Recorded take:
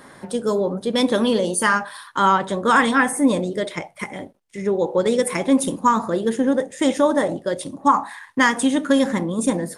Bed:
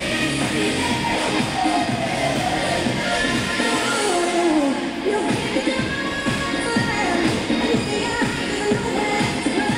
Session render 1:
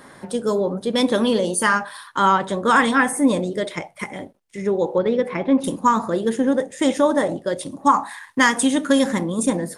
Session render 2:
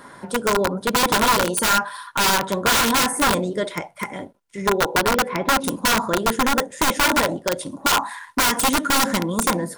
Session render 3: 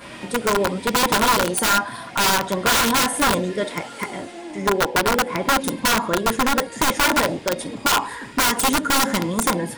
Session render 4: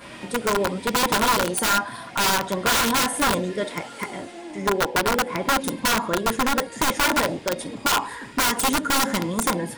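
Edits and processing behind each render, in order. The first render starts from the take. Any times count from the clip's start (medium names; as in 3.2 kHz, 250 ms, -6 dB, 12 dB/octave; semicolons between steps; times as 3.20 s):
4.98–5.64 s: distance through air 310 m; 7.71–9.43 s: treble shelf 4.2 kHz +5.5 dB
integer overflow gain 13.5 dB; small resonant body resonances 1/1.4 kHz, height 10 dB, ringing for 40 ms
add bed -17 dB
trim -2.5 dB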